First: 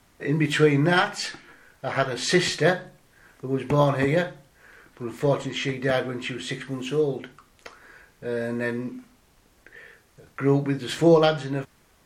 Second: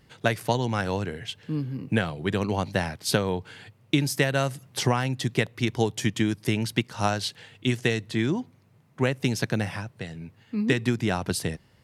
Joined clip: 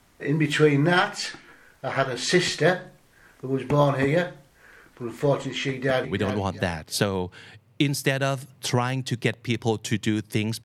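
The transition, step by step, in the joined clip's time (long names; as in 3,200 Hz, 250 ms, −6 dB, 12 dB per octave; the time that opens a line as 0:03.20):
first
0:05.68–0:06.05: delay throw 350 ms, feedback 25%, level −9 dB
0:06.05: continue with second from 0:02.18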